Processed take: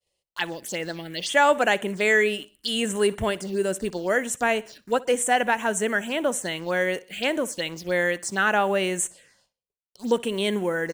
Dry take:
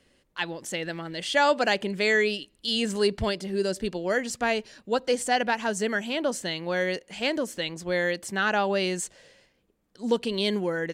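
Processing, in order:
downward expander −55 dBFS
spectral tilt +1.5 dB per octave
in parallel at −4.5 dB: bit reduction 7 bits
on the sum: phaser swept by the level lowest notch 260 Hz, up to 4,700 Hz, full sweep at −22 dBFS
repeating echo 62 ms, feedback 42%, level −22 dB

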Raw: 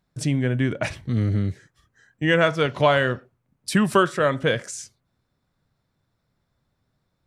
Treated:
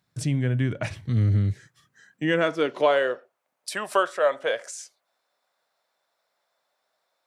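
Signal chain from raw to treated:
high-pass filter sweep 98 Hz → 620 Hz, 0:01.45–0:03.34
one half of a high-frequency compander encoder only
level −5.5 dB

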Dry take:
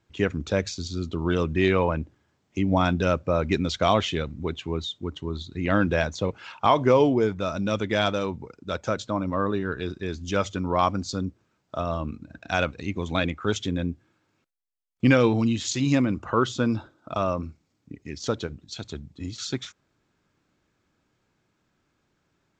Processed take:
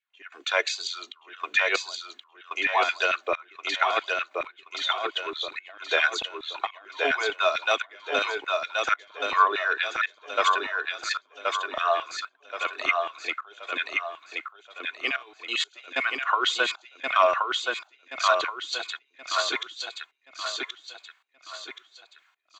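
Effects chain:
spectral tilt +4.5 dB per octave
notch filter 5,300 Hz, Q 5.6
comb filter 2.8 ms, depth 53%
compressor whose output falls as the input rises −24 dBFS, ratio −0.5
three-way crossover with the lows and the highs turned down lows −23 dB, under 500 Hz, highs −18 dB, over 3,700 Hz
auto-filter high-pass saw down 4.5 Hz 270–2,400 Hz
gate pattern "..xxxxx..xx..x" 94 BPM −24 dB
tape wow and flutter 49 cents
on a send: repeating echo 1,076 ms, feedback 39%, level −3.5 dB
on the sum: level +2.5 dB

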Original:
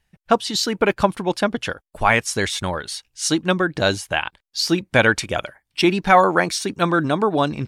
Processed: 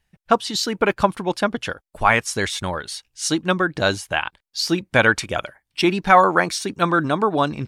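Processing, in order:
dynamic equaliser 1,200 Hz, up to +4 dB, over −28 dBFS, Q 1.6
level −1.5 dB

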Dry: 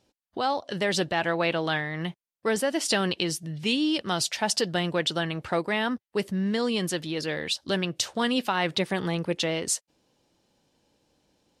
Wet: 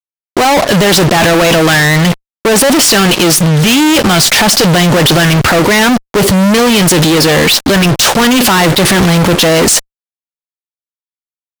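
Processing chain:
transient designer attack −4 dB, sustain +10 dB
fuzz pedal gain 49 dB, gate −45 dBFS
level +6.5 dB

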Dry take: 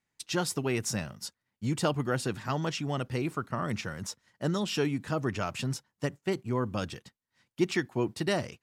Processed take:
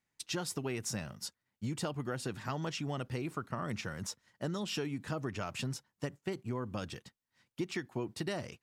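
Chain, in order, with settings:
downward compressor, threshold −31 dBFS, peak gain reduction 10.5 dB
level −2 dB

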